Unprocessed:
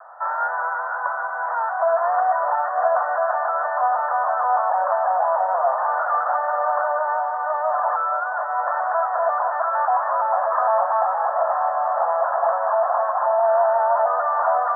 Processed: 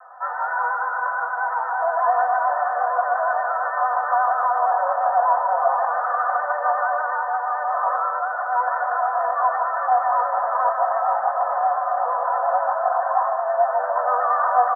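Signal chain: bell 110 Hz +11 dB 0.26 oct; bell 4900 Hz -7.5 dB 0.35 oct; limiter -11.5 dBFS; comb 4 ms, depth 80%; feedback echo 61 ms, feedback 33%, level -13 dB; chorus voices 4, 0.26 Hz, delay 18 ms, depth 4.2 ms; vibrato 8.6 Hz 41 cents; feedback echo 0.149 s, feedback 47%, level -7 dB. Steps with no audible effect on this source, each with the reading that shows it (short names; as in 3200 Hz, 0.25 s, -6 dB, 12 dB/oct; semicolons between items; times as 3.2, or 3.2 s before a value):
bell 110 Hz: input band starts at 480 Hz; bell 4900 Hz: input band ends at 1800 Hz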